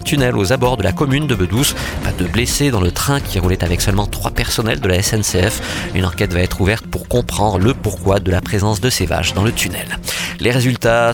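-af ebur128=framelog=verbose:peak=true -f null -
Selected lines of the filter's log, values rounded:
Integrated loudness:
  I:         -16.3 LUFS
  Threshold: -26.3 LUFS
Loudness range:
  LRA:         0.9 LU
  Threshold: -36.5 LUFS
  LRA low:   -16.8 LUFS
  LRA high:  -16.0 LUFS
True peak:
  Peak:       -1.3 dBFS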